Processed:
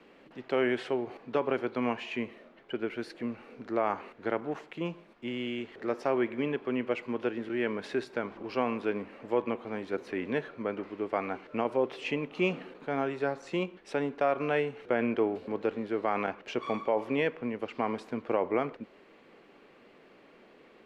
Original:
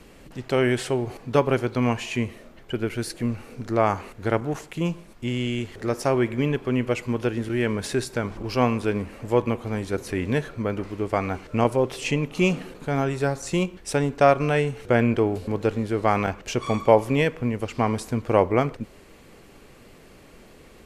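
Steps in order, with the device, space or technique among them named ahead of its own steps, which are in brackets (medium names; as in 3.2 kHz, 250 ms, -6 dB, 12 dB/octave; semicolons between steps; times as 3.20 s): DJ mixer with the lows and highs turned down (three-band isolator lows -23 dB, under 200 Hz, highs -23 dB, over 3.9 kHz; peak limiter -11.5 dBFS, peak gain reduction 8 dB); trim -5 dB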